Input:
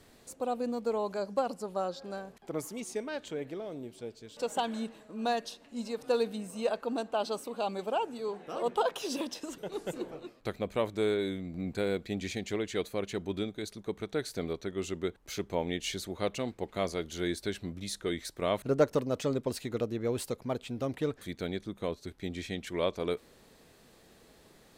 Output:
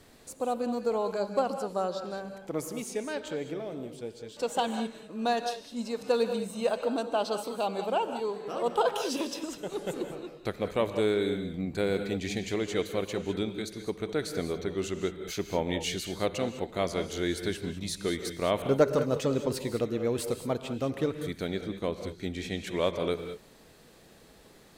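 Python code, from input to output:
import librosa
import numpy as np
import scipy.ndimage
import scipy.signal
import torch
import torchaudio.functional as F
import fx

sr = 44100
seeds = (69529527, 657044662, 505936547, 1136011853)

y = fx.rev_gated(x, sr, seeds[0], gate_ms=230, shape='rising', drr_db=8.0)
y = y * librosa.db_to_amplitude(2.5)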